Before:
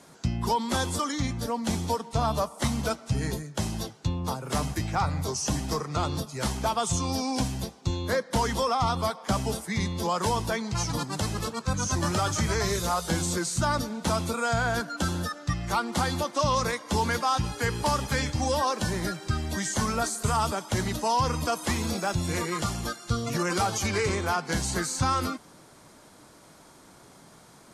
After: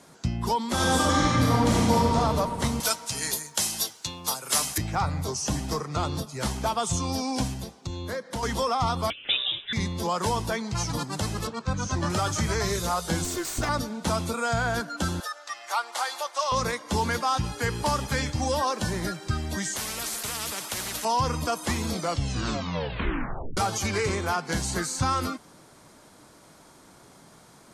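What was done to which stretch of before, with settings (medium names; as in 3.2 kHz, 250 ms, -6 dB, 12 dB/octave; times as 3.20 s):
0.73–2.15 s: reverb throw, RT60 3 s, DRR -7 dB
2.80–4.78 s: tilt EQ +4.5 dB/octave
7.53–8.43 s: compression 2:1, threshold -33 dBFS
9.10–9.73 s: frequency inversion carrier 3.7 kHz
11.47–12.10 s: distance through air 82 m
13.24–13.69 s: comb filter that takes the minimum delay 2.8 ms
15.20–16.52 s: high-pass 610 Hz 24 dB/octave
19.76–21.05 s: spectrum-flattening compressor 4:1
21.87 s: tape stop 1.70 s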